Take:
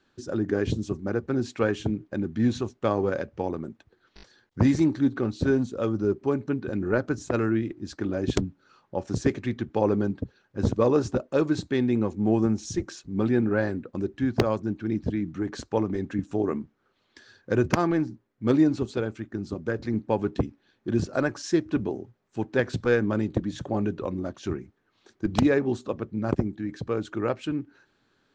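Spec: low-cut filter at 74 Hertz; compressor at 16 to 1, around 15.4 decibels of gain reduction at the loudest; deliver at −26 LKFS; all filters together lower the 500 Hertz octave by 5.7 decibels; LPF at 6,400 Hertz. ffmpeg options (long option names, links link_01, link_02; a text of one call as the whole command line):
ffmpeg -i in.wav -af "highpass=74,lowpass=6400,equalizer=frequency=500:width_type=o:gain=-7.5,acompressor=threshold=-35dB:ratio=16,volume=15.5dB" out.wav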